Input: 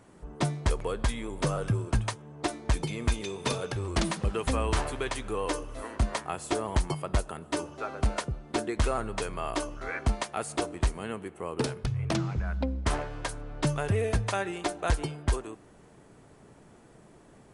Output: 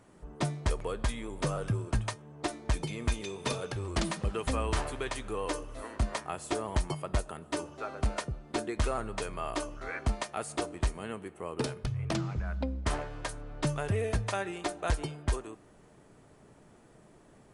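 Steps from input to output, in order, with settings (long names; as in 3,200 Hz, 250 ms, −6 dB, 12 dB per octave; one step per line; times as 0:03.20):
tuned comb filter 610 Hz, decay 0.19 s, harmonics all, mix 50%
level +2.5 dB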